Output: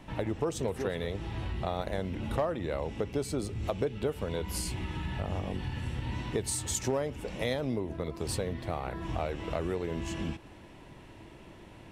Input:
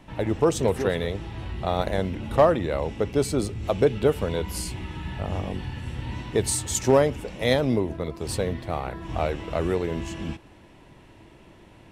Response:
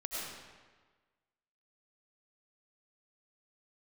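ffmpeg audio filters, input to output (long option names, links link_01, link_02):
-af "acompressor=threshold=-31dB:ratio=3"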